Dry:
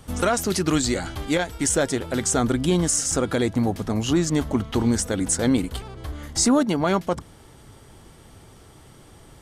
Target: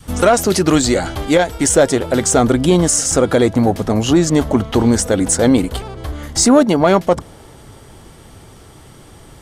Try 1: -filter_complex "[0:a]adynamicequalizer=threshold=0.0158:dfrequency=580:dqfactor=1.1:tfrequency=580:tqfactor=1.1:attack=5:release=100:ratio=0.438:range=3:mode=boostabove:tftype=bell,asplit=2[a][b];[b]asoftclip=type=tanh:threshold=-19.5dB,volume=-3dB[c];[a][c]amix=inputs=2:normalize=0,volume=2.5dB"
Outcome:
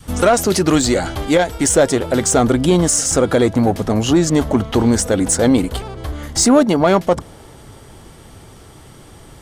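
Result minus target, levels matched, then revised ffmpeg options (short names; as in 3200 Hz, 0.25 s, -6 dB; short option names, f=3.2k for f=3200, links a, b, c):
soft clip: distortion +7 dB
-filter_complex "[0:a]adynamicequalizer=threshold=0.0158:dfrequency=580:dqfactor=1.1:tfrequency=580:tqfactor=1.1:attack=5:release=100:ratio=0.438:range=3:mode=boostabove:tftype=bell,asplit=2[a][b];[b]asoftclip=type=tanh:threshold=-13dB,volume=-3dB[c];[a][c]amix=inputs=2:normalize=0,volume=2.5dB"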